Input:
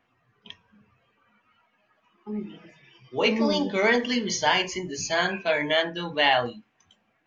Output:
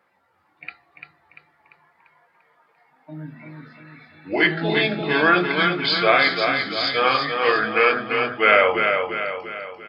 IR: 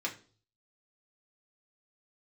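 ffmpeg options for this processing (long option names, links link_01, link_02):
-filter_complex "[0:a]highpass=frequency=820:poles=1,asetrate=32414,aresample=44100,asplit=2[link_01][link_02];[link_02]aecho=0:1:344|688|1032|1376|1720|2064:0.531|0.26|0.127|0.0625|0.0306|0.015[link_03];[link_01][link_03]amix=inputs=2:normalize=0,volume=7dB"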